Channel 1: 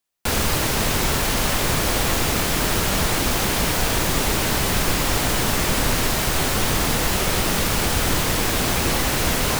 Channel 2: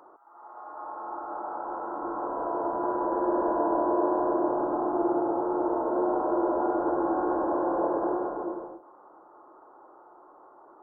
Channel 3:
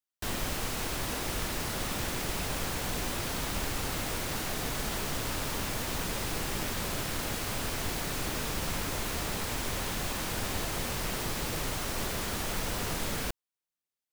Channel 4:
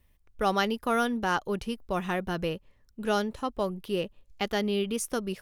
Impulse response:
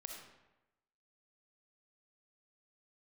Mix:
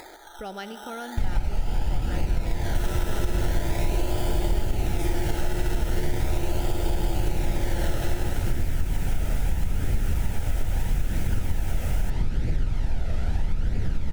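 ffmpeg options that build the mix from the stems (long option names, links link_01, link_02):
-filter_complex "[0:a]equalizer=frequency=4300:width_type=o:width=0.42:gain=-14.5,adelay=2500,volume=-15.5dB[link_01];[1:a]acrusher=samples=15:mix=1:aa=0.000001:lfo=1:lforange=9:lforate=0.4,volume=-5dB,asplit=2[link_02][link_03];[link_03]volume=-8.5dB[link_04];[2:a]aemphasis=mode=reproduction:type=riaa,flanger=delay=0.4:depth=1.2:regen=38:speed=0.78:shape=triangular,adelay=950,volume=2.5dB[link_05];[3:a]volume=-13dB,asplit=2[link_06][link_07];[link_07]volume=-3dB[link_08];[4:a]atrim=start_sample=2205[link_09];[link_08][link_09]afir=irnorm=-1:irlink=0[link_10];[link_04]aecho=0:1:109:1[link_11];[link_01][link_02][link_05][link_06][link_10][link_11]amix=inputs=6:normalize=0,acompressor=mode=upward:threshold=-32dB:ratio=2.5,asuperstop=centerf=1100:order=4:qfactor=4.1,acompressor=threshold=-18dB:ratio=6"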